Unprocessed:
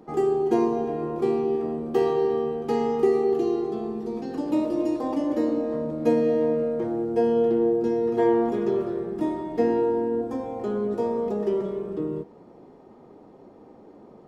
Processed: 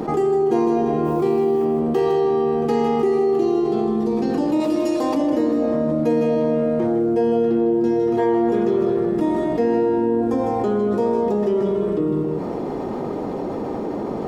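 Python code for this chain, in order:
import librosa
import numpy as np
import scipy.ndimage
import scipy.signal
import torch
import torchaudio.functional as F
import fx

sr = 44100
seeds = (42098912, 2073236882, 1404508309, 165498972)

y = fx.dmg_noise_colour(x, sr, seeds[0], colour='white', level_db=-64.0, at=(1.04, 1.64), fade=0.02)
y = fx.tilt_shelf(y, sr, db=-6.0, hz=1300.0, at=(4.6, 5.15))
y = y + 10.0 ** (-7.5 / 20.0) * np.pad(y, (int(156 * sr / 1000.0), 0))[:len(y)]
y = fx.env_flatten(y, sr, amount_pct=70)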